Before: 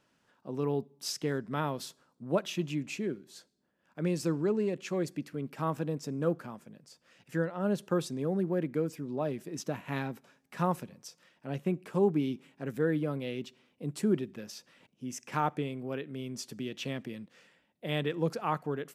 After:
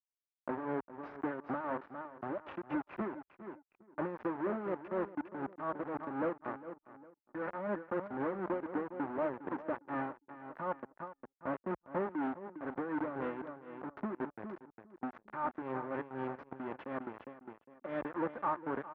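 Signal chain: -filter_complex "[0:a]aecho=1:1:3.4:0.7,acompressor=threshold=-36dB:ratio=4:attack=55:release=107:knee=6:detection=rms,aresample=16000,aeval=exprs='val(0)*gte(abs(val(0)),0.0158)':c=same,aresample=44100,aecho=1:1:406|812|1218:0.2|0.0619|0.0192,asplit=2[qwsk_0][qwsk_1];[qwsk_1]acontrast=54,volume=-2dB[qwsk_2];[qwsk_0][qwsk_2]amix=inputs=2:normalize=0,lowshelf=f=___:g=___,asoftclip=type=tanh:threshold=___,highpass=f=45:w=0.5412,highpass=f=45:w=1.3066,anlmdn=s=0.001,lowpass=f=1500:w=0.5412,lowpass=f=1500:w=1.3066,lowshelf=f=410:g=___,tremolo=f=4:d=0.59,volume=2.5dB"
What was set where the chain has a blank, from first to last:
63, -10.5, -26dB, -7.5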